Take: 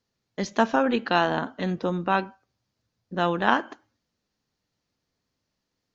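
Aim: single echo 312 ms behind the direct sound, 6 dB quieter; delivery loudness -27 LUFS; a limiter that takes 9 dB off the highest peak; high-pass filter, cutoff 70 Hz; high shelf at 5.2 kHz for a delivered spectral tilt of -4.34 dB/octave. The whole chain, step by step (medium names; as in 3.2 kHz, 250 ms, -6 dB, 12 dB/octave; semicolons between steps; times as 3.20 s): high-pass 70 Hz; treble shelf 5.2 kHz -3 dB; peak limiter -13 dBFS; delay 312 ms -6 dB; trim +0.5 dB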